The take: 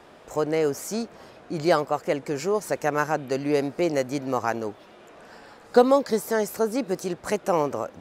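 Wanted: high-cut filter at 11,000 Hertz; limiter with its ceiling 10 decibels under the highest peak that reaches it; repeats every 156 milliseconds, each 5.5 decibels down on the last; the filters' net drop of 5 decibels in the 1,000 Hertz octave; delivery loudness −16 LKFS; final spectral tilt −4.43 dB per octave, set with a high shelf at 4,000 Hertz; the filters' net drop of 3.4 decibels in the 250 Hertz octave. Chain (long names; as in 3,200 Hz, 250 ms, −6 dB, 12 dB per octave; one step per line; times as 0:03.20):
low-pass filter 11,000 Hz
parametric band 250 Hz −4 dB
parametric band 1,000 Hz −7 dB
high-shelf EQ 4,000 Hz +3 dB
brickwall limiter −17.5 dBFS
repeating echo 156 ms, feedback 53%, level −5.5 dB
level +13 dB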